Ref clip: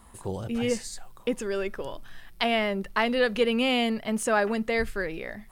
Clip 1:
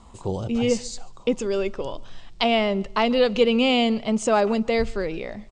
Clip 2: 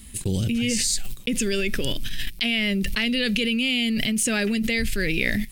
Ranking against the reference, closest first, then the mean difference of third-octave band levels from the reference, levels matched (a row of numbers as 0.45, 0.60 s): 1, 2; 3.0, 8.5 dB